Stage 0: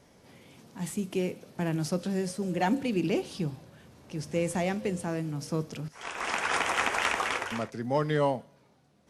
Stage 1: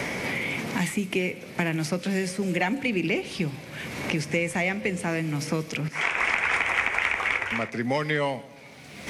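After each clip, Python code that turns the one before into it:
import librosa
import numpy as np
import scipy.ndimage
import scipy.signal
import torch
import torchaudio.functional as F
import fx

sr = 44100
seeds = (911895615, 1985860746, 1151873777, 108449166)

y = fx.peak_eq(x, sr, hz=2200.0, db=14.5, octaves=0.64)
y = fx.echo_filtered(y, sr, ms=135, feedback_pct=42, hz=1000.0, wet_db=-21.5)
y = fx.band_squash(y, sr, depth_pct=100)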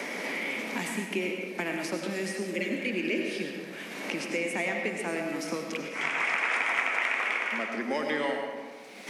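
y = scipy.signal.sosfilt(scipy.signal.butter(6, 210.0, 'highpass', fs=sr, output='sos'), x)
y = fx.spec_repair(y, sr, seeds[0], start_s=2.58, length_s=0.98, low_hz=650.0, high_hz=1900.0, source='before')
y = fx.rev_freeverb(y, sr, rt60_s=1.5, hf_ratio=0.55, predelay_ms=55, drr_db=2.0)
y = y * librosa.db_to_amplitude(-5.0)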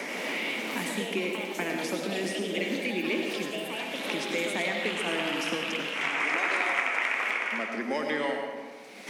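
y = fx.echo_pitch(x, sr, ms=85, semitones=4, count=2, db_per_echo=-6.0)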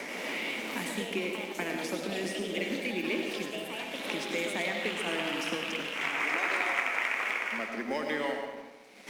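y = fx.law_mismatch(x, sr, coded='A')
y = y * librosa.db_to_amplitude(-1.5)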